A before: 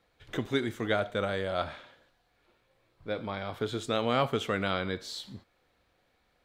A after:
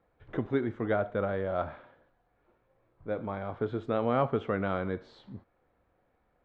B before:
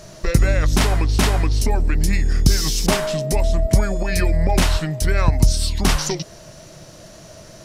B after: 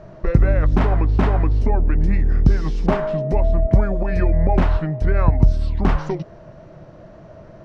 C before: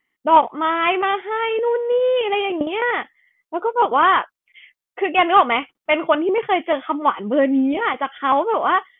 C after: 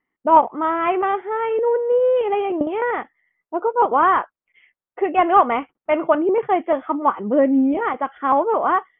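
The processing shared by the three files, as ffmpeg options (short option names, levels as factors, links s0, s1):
-af "lowpass=1300,volume=1.12"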